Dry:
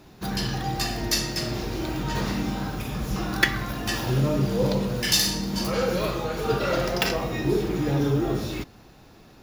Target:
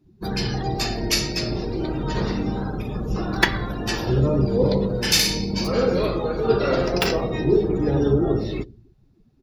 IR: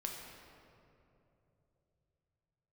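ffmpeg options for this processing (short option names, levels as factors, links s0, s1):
-filter_complex "[0:a]asplit=2[s0][s1];[s1]equalizer=f=1000:t=o:w=1:g=-6,equalizer=f=2000:t=o:w=1:g=-10,equalizer=f=4000:t=o:w=1:g=9,equalizer=f=8000:t=o:w=1:g=4[s2];[1:a]atrim=start_sample=2205,afade=t=out:st=0.38:d=0.01,atrim=end_sample=17199,highshelf=f=8900:g=-4[s3];[s2][s3]afir=irnorm=-1:irlink=0,volume=0.266[s4];[s0][s4]amix=inputs=2:normalize=0,afftdn=nr=26:nf=-36,asplit=3[s5][s6][s7];[s6]asetrate=22050,aresample=44100,atempo=2,volume=0.398[s8];[s7]asetrate=37084,aresample=44100,atempo=1.18921,volume=0.2[s9];[s5][s8][s9]amix=inputs=3:normalize=0,equalizer=f=420:w=2.6:g=6"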